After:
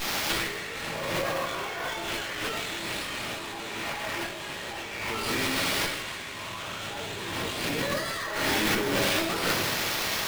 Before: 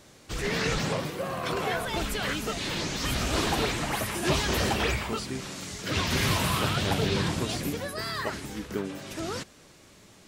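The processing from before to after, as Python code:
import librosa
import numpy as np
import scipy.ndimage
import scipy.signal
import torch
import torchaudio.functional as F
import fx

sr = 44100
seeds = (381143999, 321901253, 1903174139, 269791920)

y = fx.octave_divider(x, sr, octaves=1, level_db=-3.0)
y = scipy.signal.sosfilt(scipy.signal.butter(2, 4300.0, 'lowpass', fs=sr, output='sos'), y)
y = fx.high_shelf(y, sr, hz=2500.0, db=10.0)
y = fx.dmg_noise_colour(y, sr, seeds[0], colour='white', level_db=-43.0)
y = fx.highpass(y, sr, hz=640.0, slope=6)
y = fx.room_shoebox(y, sr, seeds[1], volume_m3=110.0, walls='mixed', distance_m=2.4)
y = fx.over_compress(y, sr, threshold_db=-31.0, ratio=-1.0)
y = y + 10.0 ** (-11.5 / 20.0) * np.pad(y, (int(159 * sr / 1000.0), 0))[:len(y)]
y = fx.running_max(y, sr, window=5)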